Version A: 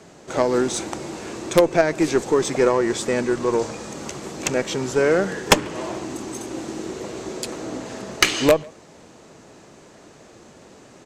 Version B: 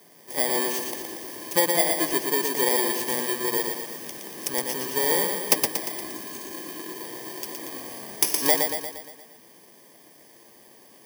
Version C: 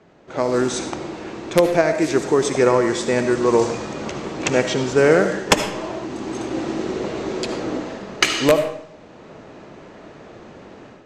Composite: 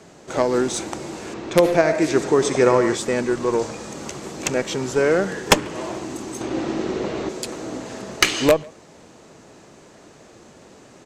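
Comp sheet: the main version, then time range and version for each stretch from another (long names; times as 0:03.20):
A
0:01.34–0:02.95: punch in from C
0:06.41–0:07.29: punch in from C
not used: B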